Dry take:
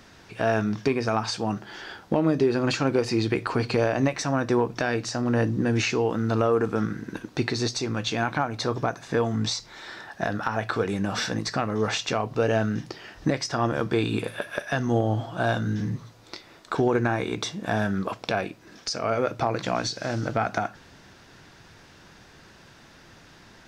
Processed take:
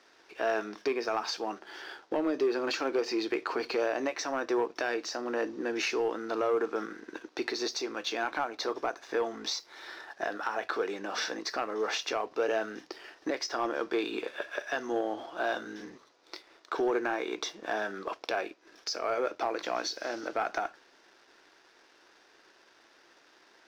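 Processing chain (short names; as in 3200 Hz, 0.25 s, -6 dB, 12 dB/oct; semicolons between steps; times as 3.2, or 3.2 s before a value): Chebyshev band-pass 340–5900 Hz, order 3; sample leveller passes 1; gain -7.5 dB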